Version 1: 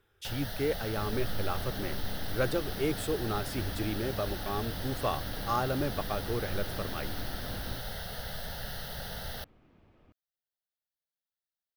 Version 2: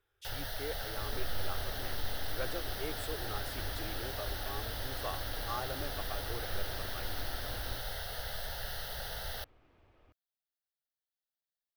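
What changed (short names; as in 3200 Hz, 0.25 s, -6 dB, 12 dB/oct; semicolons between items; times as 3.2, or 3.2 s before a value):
speech -8.0 dB; master: add bell 190 Hz -13.5 dB 1.1 oct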